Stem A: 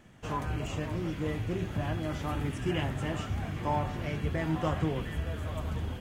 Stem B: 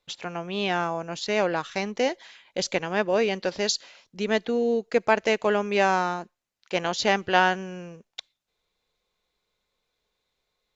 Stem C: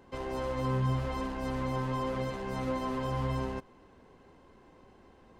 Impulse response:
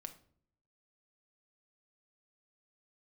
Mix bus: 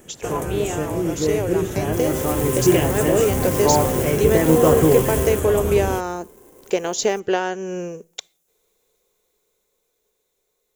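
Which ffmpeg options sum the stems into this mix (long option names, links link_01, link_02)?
-filter_complex "[0:a]volume=2dB,asplit=2[link_01][link_02];[link_02]volume=-6dB[link_03];[1:a]acompressor=threshold=-30dB:ratio=3,volume=-2.5dB,asplit=2[link_04][link_05];[link_05]volume=-12dB[link_06];[2:a]acrusher=bits=2:mode=log:mix=0:aa=0.000001,adelay=1800,volume=-3.5dB[link_07];[3:a]atrim=start_sample=2205[link_08];[link_03][link_06]amix=inputs=2:normalize=0[link_09];[link_09][link_08]afir=irnorm=-1:irlink=0[link_10];[link_01][link_04][link_07][link_10]amix=inputs=4:normalize=0,equalizer=frequency=420:width=1.6:gain=12.5,dynaudnorm=framelen=370:gausssize=13:maxgain=7.5dB,aexciter=amount=4.1:drive=8.5:freq=6300"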